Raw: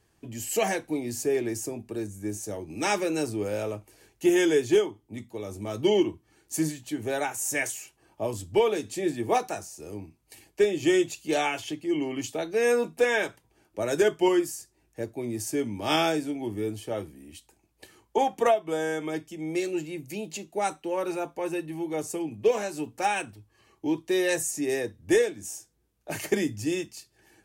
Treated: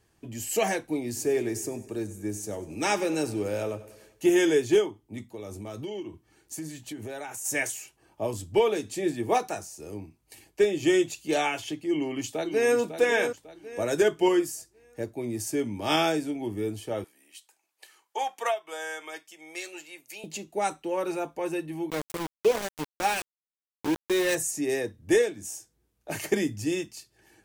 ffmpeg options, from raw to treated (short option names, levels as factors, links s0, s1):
-filter_complex "[0:a]asplit=3[s0][s1][s2];[s0]afade=t=out:st=1.15:d=0.02[s3];[s1]aecho=1:1:97|194|291|388|485:0.141|0.0791|0.0443|0.0248|0.0139,afade=t=in:st=1.15:d=0.02,afade=t=out:st=4.5:d=0.02[s4];[s2]afade=t=in:st=4.5:d=0.02[s5];[s3][s4][s5]amix=inputs=3:normalize=0,asplit=3[s6][s7][s8];[s6]afade=t=out:st=5.22:d=0.02[s9];[s7]acompressor=threshold=0.02:ratio=5:attack=3.2:release=140:knee=1:detection=peak,afade=t=in:st=5.22:d=0.02,afade=t=out:st=7.44:d=0.02[s10];[s8]afade=t=in:st=7.44:d=0.02[s11];[s9][s10][s11]amix=inputs=3:normalize=0,asplit=2[s12][s13];[s13]afade=t=in:st=11.9:d=0.01,afade=t=out:st=12.77:d=0.01,aecho=0:1:550|1100|1650|2200:0.398107|0.139338|0.0487681|0.0170688[s14];[s12][s14]amix=inputs=2:normalize=0,asettb=1/sr,asplit=3[s15][s16][s17];[s15]atrim=end=17.044[s18];[s16]atrim=start=17.04:end=20.24,asetpts=PTS-STARTPTS,afade=t=in:d=0.004:c=qsin,afade=t=out:st=3.196:d=0.004:c=qsin,highpass=900[s19];[s17]atrim=start=20.236[s20];[s18][s19]acrossfade=d=0.004:c1=hsin:c2=qsin[s21];[s21][s20]acrossfade=d=0.004:c1=qsin:c2=hsin,asettb=1/sr,asplit=3[s22][s23][s24];[s22]atrim=end=21.904[s25];[s23]atrim=start=21.9:end=24.35,asetpts=PTS-STARTPTS,afade=t=in:d=0.004:c=qsin,afade=t=out:st=2.446:d=0.004:c=qsin,aeval=exprs='val(0)*gte(abs(val(0)),0.0398)':c=same[s26];[s24]atrim=start=24.346[s27];[s25][s26]acrossfade=d=0.004:c1=hsin:c2=qsin[s28];[s28][s27]acrossfade=d=0.004:c1=qsin:c2=hsin"